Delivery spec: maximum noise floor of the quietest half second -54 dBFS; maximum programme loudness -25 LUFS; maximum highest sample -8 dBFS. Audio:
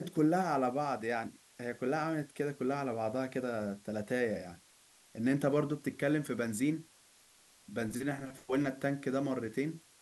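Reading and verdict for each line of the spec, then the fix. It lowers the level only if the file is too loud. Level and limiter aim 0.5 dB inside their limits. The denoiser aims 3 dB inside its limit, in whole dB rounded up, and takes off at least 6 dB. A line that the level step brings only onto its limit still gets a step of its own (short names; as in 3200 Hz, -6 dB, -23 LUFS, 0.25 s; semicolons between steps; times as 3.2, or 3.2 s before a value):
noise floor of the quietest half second -64 dBFS: OK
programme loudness -35.0 LUFS: OK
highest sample -18.0 dBFS: OK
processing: none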